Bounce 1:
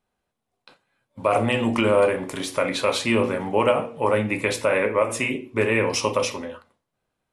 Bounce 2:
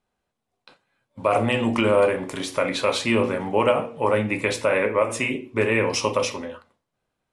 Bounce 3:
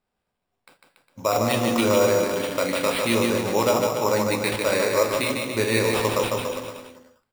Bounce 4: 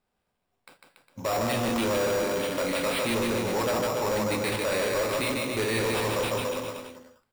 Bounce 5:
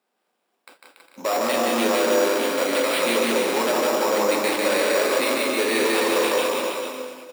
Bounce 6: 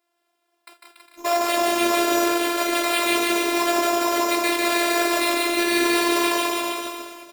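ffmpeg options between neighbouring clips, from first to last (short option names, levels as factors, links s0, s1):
-af "lowpass=10000"
-af "aecho=1:1:150|285|406.5|515.8|614.3:0.631|0.398|0.251|0.158|0.1,acrusher=samples=7:mix=1:aa=0.000001,volume=0.794"
-af "asoftclip=type=tanh:threshold=0.0596,volume=1.12"
-filter_complex "[0:a]highpass=f=250:w=0.5412,highpass=f=250:w=1.3066,asplit=2[s0][s1];[s1]aecho=0:1:180|324|439.2|531.4|605.1:0.631|0.398|0.251|0.158|0.1[s2];[s0][s2]amix=inputs=2:normalize=0,volume=1.68"
-af "lowshelf=f=190:g=-9,afftfilt=real='hypot(re,im)*cos(PI*b)':imag='0':win_size=512:overlap=0.75,volume=1.88"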